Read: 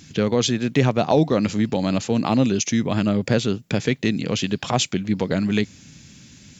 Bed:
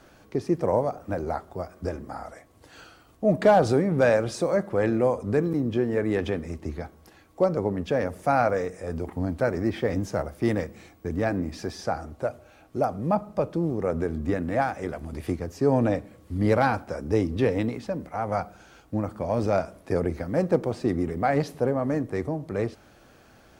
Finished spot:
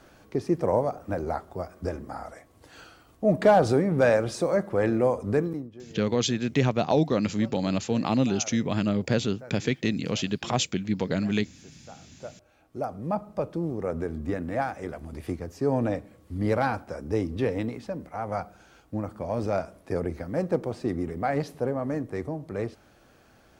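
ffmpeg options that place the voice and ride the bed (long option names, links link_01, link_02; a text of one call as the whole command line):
ffmpeg -i stem1.wav -i stem2.wav -filter_complex "[0:a]adelay=5800,volume=-5dB[link_01];[1:a]volume=16.5dB,afade=type=out:start_time=5.36:duration=0.34:silence=0.1,afade=type=in:start_time=11.88:duration=1.44:silence=0.141254[link_02];[link_01][link_02]amix=inputs=2:normalize=0" out.wav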